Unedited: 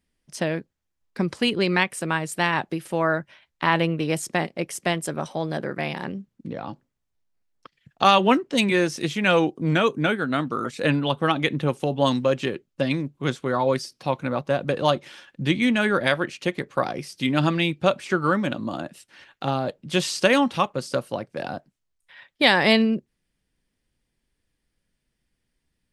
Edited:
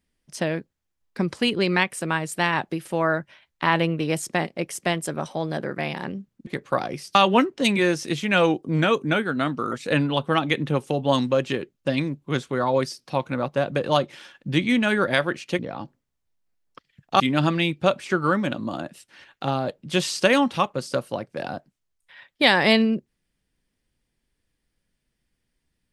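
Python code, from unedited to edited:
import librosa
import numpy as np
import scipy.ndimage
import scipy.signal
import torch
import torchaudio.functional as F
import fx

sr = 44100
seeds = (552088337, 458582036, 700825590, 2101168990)

y = fx.edit(x, sr, fx.swap(start_s=6.47, length_s=1.61, other_s=16.52, other_length_s=0.68), tone=tone)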